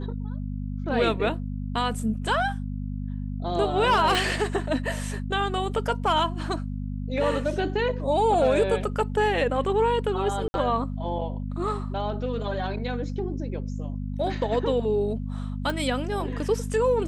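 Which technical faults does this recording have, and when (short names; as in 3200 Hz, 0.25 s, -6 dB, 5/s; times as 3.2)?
hum 50 Hz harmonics 5 -31 dBFS
4.15 pop
10.48–10.54 gap 60 ms
15.7 pop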